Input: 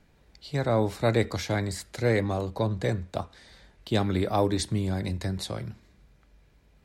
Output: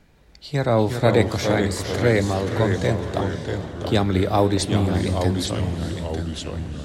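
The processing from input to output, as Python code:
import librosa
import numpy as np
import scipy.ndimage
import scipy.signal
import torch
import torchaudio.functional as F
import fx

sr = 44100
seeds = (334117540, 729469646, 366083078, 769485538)

y = fx.echo_pitch(x, sr, ms=290, semitones=-2, count=3, db_per_echo=-6.0)
y = fx.echo_diffused(y, sr, ms=451, feedback_pct=42, wet_db=-12.0)
y = F.gain(torch.from_numpy(y), 5.5).numpy()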